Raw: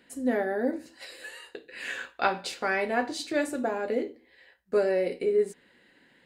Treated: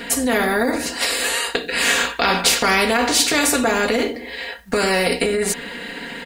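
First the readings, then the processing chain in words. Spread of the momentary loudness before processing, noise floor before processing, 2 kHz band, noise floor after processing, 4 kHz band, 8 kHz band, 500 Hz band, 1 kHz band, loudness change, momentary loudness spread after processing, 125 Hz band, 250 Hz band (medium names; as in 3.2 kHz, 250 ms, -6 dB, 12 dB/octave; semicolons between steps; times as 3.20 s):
16 LU, -62 dBFS, +14.0 dB, -34 dBFS, +21.0 dB, +24.5 dB, +6.0 dB, +11.0 dB, +11.0 dB, 11 LU, no reading, +9.5 dB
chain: comb 4.3 ms, depth 96%; loudness maximiser +19 dB; spectrum-flattening compressor 2:1; trim -1 dB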